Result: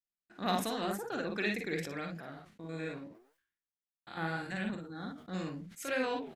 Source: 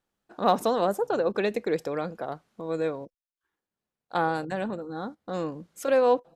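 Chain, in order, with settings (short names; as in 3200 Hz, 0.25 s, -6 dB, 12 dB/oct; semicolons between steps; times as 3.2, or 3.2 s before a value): 2.2–4.48 stepped spectrum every 0.1 s; gate with hold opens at -51 dBFS; flange 0.87 Hz, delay 3.5 ms, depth 9.8 ms, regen +80%; graphic EQ 500/1000/2000 Hz -11/-9/+7 dB; early reflections 43 ms -6 dB, 54 ms -5 dB; sustainer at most 100 dB/s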